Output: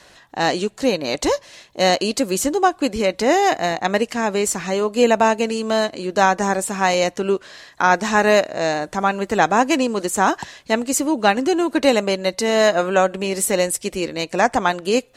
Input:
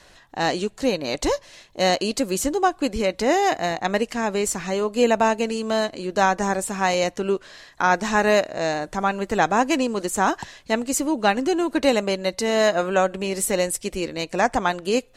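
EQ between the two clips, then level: high-pass 98 Hz 6 dB/octave; +3.5 dB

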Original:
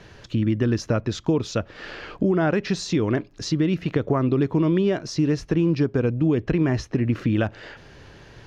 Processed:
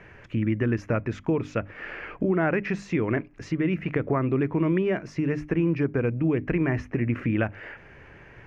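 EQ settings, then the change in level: resonant high shelf 3 kHz -10 dB, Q 3; hum notches 50/100/150/200/250/300 Hz; -3.0 dB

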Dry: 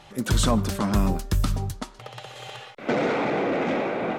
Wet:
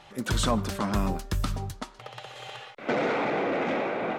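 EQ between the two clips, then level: bass shelf 450 Hz -6 dB; treble shelf 5 kHz -6.5 dB; 0.0 dB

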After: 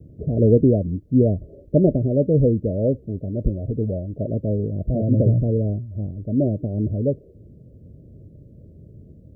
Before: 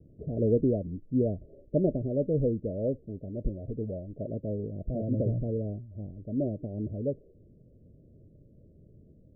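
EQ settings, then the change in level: high-pass 54 Hz; bass shelf 130 Hz +8 dB; +8.0 dB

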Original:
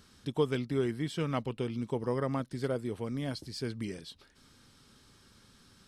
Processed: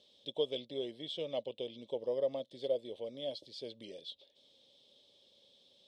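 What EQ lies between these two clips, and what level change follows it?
two resonant band-passes 1.4 kHz, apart 2.6 oct; +7.0 dB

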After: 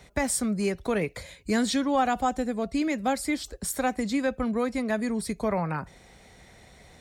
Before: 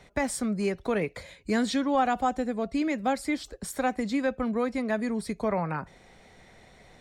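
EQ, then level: high-pass 46 Hz; bass shelf 75 Hz +11.5 dB; treble shelf 5.6 kHz +9.5 dB; 0.0 dB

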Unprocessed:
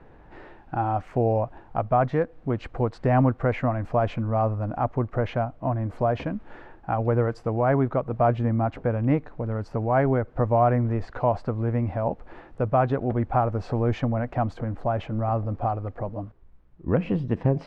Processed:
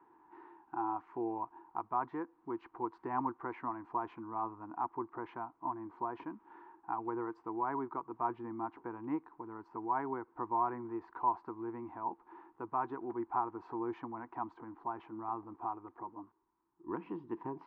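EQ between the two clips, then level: two resonant band-passes 570 Hz, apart 1.5 oct; bass shelf 500 Hz -12 dB; +3.5 dB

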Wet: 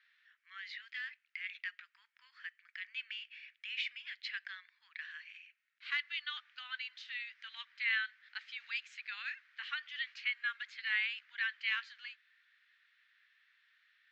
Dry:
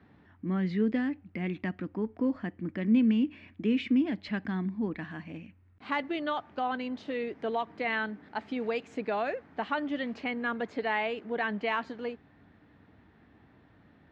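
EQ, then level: steep high-pass 1.5 kHz 36 dB/octave; distance through air 180 m; differentiator; +13.5 dB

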